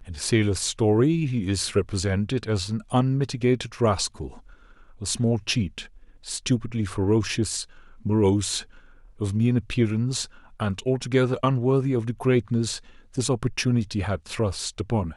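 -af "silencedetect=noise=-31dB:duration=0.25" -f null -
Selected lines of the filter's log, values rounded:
silence_start: 4.28
silence_end: 5.02 | silence_duration: 0.74
silence_start: 5.82
silence_end: 6.26 | silence_duration: 0.44
silence_start: 7.63
silence_end: 8.06 | silence_duration: 0.42
silence_start: 8.61
silence_end: 9.21 | silence_duration: 0.60
silence_start: 10.25
silence_end: 10.60 | silence_duration: 0.35
silence_start: 12.78
silence_end: 13.17 | silence_duration: 0.40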